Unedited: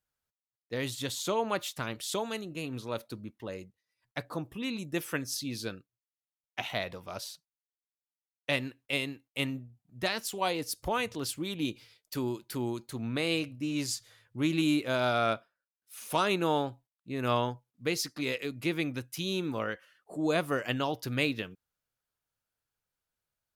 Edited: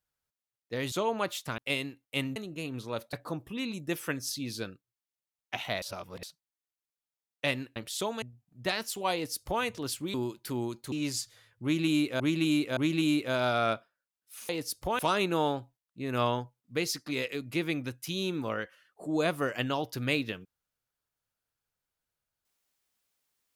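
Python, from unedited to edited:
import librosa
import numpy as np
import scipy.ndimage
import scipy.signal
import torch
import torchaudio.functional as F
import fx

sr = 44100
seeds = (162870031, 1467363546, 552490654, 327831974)

y = fx.edit(x, sr, fx.cut(start_s=0.92, length_s=0.31),
    fx.swap(start_s=1.89, length_s=0.46, other_s=8.81, other_length_s=0.78),
    fx.cut(start_s=3.12, length_s=1.06),
    fx.reverse_span(start_s=6.87, length_s=0.41),
    fx.duplicate(start_s=10.5, length_s=0.5, to_s=16.09),
    fx.cut(start_s=11.51, length_s=0.68),
    fx.cut(start_s=12.97, length_s=0.69),
    fx.repeat(start_s=14.37, length_s=0.57, count=3), tone=tone)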